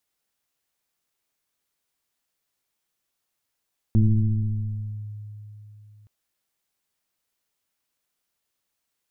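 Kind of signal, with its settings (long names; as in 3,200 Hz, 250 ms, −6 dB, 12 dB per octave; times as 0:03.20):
two-operator FM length 2.12 s, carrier 105 Hz, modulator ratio 1.07, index 0.99, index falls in 1.19 s linear, decay 3.48 s, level −13 dB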